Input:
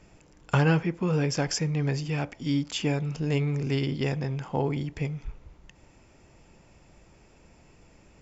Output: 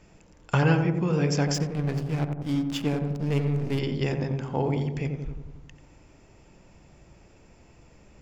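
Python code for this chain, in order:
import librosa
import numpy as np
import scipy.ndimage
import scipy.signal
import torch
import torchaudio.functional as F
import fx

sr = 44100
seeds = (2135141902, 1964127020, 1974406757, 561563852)

y = fx.backlash(x, sr, play_db=-28.5, at=(1.54, 3.79))
y = fx.echo_filtered(y, sr, ms=89, feedback_pct=68, hz=910.0, wet_db=-4.0)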